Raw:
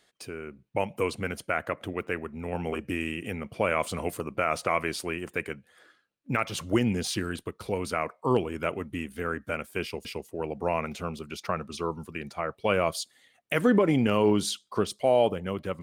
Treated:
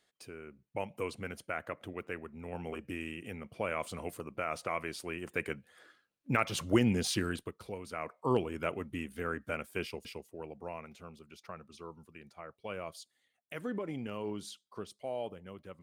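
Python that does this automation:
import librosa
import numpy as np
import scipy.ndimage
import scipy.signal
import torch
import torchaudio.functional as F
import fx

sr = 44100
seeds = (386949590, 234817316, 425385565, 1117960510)

y = fx.gain(x, sr, db=fx.line((4.99, -9.0), (5.5, -2.0), (7.29, -2.0), (7.84, -14.0), (8.18, -5.0), (9.8, -5.0), (10.84, -16.0)))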